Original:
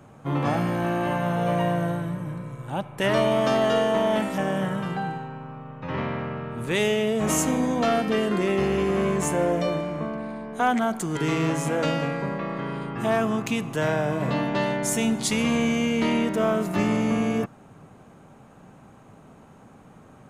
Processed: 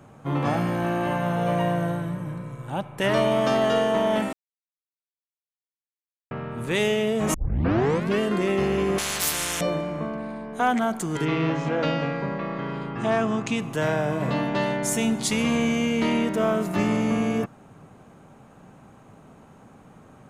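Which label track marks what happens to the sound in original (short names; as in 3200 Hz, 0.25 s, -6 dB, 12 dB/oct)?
4.330000	6.310000	mute
7.340000	7.340000	tape start 0.86 s
8.980000	9.610000	spectral compressor 10:1
11.240000	13.600000	LPF 4100 Hz -> 9200 Hz 24 dB/oct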